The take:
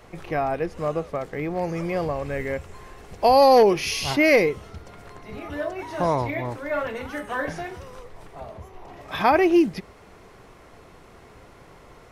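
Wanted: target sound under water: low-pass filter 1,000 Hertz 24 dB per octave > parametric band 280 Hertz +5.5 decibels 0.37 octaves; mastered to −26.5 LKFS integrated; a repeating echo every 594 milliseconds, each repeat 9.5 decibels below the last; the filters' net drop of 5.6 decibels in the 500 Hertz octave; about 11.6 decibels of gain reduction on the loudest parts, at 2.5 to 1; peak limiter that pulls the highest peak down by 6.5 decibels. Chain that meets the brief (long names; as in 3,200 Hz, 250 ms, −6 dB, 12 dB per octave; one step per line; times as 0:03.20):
parametric band 500 Hz −7.5 dB
downward compressor 2.5 to 1, threshold −34 dBFS
brickwall limiter −26 dBFS
low-pass filter 1,000 Hz 24 dB per octave
parametric band 280 Hz +5.5 dB 0.37 octaves
repeating echo 594 ms, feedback 33%, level −9.5 dB
level +11 dB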